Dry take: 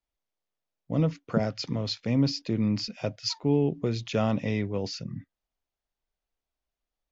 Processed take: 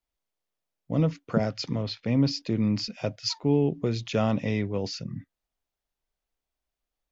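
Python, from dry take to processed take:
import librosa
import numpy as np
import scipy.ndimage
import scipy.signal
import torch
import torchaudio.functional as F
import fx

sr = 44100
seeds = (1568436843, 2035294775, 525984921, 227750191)

y = fx.lowpass(x, sr, hz=fx.line((1.82, 3200.0), (2.29, 5900.0)), slope=12, at=(1.82, 2.29), fade=0.02)
y = F.gain(torch.from_numpy(y), 1.0).numpy()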